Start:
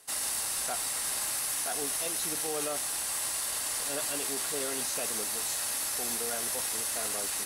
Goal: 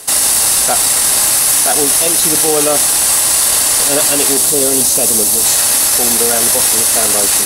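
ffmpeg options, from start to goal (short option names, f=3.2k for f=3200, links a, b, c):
-af "asetnsamples=n=441:p=0,asendcmd='4.37 equalizer g -14;5.44 equalizer g -4.5',equalizer=f=1.7k:t=o:w=2.3:g=-4.5,alimiter=level_in=27dB:limit=-1dB:release=50:level=0:latency=1,volume=-1dB"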